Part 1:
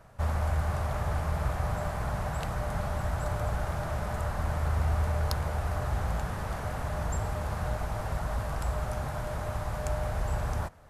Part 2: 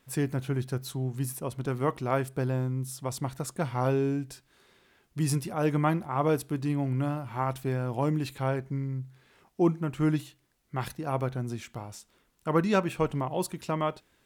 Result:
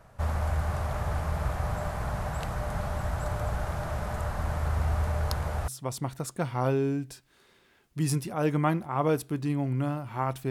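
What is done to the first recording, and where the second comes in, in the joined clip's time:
part 1
0:05.68: continue with part 2 from 0:02.88

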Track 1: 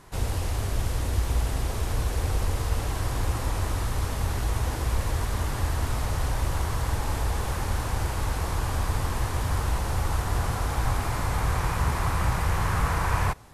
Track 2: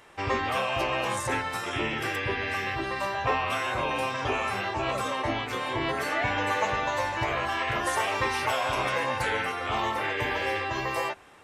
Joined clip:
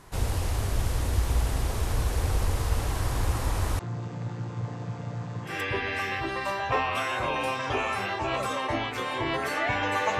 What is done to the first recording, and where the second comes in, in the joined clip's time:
track 1
0:03.79–0:05.60: channel vocoder with a chord as carrier major triad, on A#2
0:05.51: continue with track 2 from 0:02.06, crossfade 0.18 s

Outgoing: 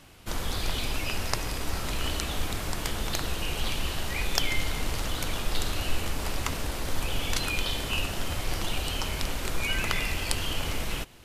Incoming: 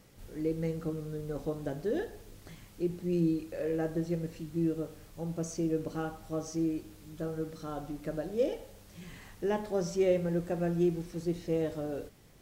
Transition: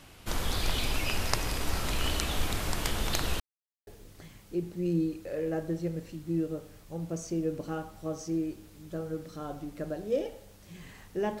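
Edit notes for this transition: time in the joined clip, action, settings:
outgoing
0:03.40–0:03.87: silence
0:03.87: continue with incoming from 0:02.14

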